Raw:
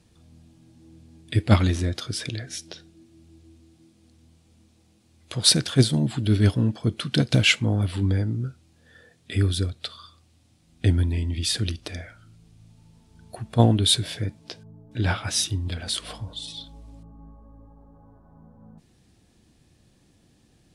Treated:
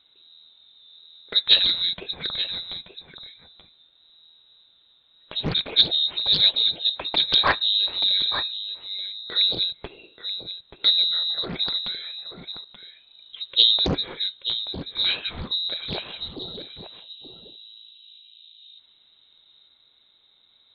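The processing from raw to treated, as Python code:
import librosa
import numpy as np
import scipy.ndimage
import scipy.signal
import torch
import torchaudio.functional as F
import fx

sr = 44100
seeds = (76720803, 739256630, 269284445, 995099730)

y = fx.freq_invert(x, sr, carrier_hz=3900)
y = y + 10.0 ** (-10.5 / 20.0) * np.pad(y, (int(881 * sr / 1000.0), 0))[:len(y)]
y = fx.doppler_dist(y, sr, depth_ms=0.81)
y = y * librosa.db_to_amplitude(-1.0)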